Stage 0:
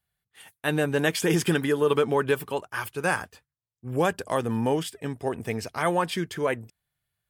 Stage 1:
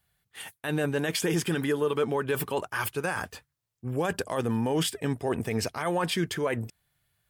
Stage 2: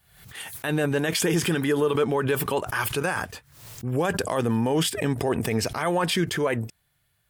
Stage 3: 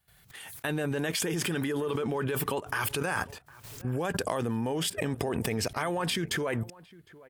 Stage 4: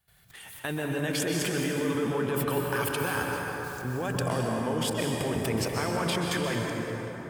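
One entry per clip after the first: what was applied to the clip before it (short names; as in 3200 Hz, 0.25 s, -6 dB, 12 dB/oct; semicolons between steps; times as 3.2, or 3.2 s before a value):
reverse; compressor 6:1, threshold -30 dBFS, peak gain reduction 11.5 dB; reverse; limiter -26 dBFS, peak gain reduction 9 dB; gain +8 dB
backwards sustainer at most 76 dB/s; gain +3.5 dB
level quantiser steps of 15 dB; outdoor echo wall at 130 m, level -21 dB
plate-style reverb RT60 3.9 s, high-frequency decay 0.5×, pre-delay 0.115 s, DRR -0.5 dB; gain -1.5 dB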